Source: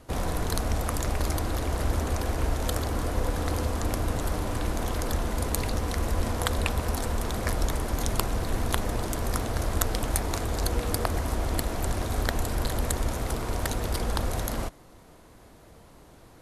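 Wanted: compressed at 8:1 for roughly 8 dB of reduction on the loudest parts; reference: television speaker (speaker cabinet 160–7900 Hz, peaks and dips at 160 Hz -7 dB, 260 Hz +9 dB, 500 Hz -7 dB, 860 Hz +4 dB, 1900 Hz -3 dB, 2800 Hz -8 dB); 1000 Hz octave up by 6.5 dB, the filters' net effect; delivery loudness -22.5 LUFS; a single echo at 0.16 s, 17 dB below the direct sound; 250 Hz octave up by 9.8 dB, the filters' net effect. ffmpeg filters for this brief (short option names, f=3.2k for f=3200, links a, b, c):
-af "equalizer=f=250:t=o:g=6.5,equalizer=f=1k:t=o:g=6,acompressor=threshold=-27dB:ratio=8,highpass=f=160:w=0.5412,highpass=f=160:w=1.3066,equalizer=f=160:t=q:w=4:g=-7,equalizer=f=260:t=q:w=4:g=9,equalizer=f=500:t=q:w=4:g=-7,equalizer=f=860:t=q:w=4:g=4,equalizer=f=1.9k:t=q:w=4:g=-3,equalizer=f=2.8k:t=q:w=4:g=-8,lowpass=f=7.9k:w=0.5412,lowpass=f=7.9k:w=1.3066,aecho=1:1:160:0.141,volume=10dB"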